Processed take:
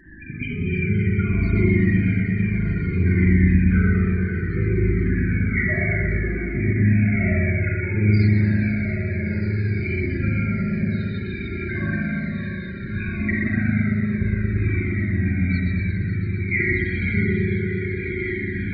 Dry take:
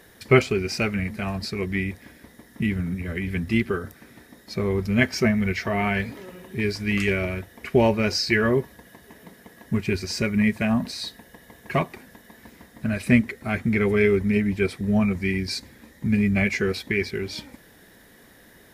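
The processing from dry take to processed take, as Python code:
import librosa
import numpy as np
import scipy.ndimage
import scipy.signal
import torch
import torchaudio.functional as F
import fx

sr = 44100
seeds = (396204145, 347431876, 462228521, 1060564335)

p1 = fx.pitch_ramps(x, sr, semitones=-1.0, every_ms=206)
p2 = scipy.signal.sosfilt(scipy.signal.butter(4, 2600.0, 'lowpass', fs=sr, output='sos'), p1)
p3 = fx.band_shelf(p2, sr, hz=700.0, db=-10.0, octaves=1.7)
p4 = fx.over_compress(p3, sr, threshold_db=-30.0, ratio=-0.5)
p5 = fx.spec_topn(p4, sr, count=16)
p6 = p5 + fx.echo_diffused(p5, sr, ms=1447, feedback_pct=45, wet_db=-5, dry=0)
p7 = fx.rev_spring(p6, sr, rt60_s=3.8, pass_ms=(38, 57), chirp_ms=80, drr_db=-7.0)
p8 = fx.comb_cascade(p7, sr, direction='falling', hz=0.6)
y = p8 * 10.0 ** (6.5 / 20.0)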